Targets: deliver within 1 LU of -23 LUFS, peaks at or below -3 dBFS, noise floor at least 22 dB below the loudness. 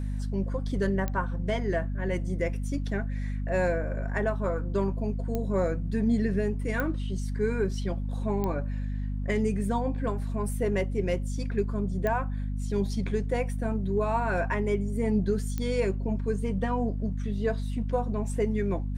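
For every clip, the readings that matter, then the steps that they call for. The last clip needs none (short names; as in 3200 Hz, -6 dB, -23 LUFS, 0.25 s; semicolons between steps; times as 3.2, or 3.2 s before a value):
clicks 6; hum 50 Hz; harmonics up to 250 Hz; hum level -28 dBFS; loudness -29.5 LUFS; peak -12.5 dBFS; loudness target -23.0 LUFS
-> de-click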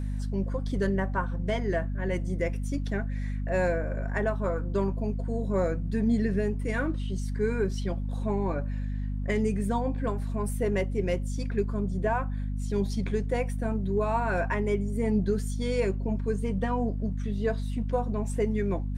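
clicks 0; hum 50 Hz; harmonics up to 250 Hz; hum level -28 dBFS
-> notches 50/100/150/200/250 Hz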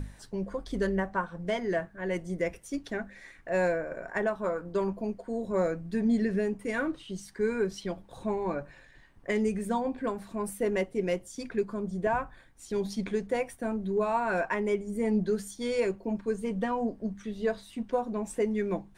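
hum none; loudness -31.5 LUFS; peak -15.0 dBFS; loudness target -23.0 LUFS
-> gain +8.5 dB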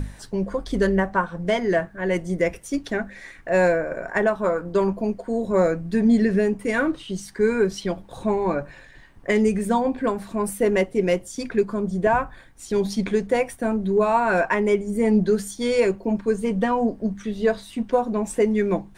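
loudness -23.0 LUFS; peak -6.5 dBFS; noise floor -47 dBFS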